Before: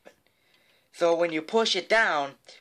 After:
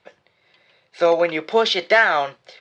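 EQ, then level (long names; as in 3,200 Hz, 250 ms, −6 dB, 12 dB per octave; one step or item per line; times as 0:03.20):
band-pass filter 110–5,100 Hz
high-frequency loss of the air 58 metres
parametric band 260 Hz −15 dB 0.4 octaves
+7.5 dB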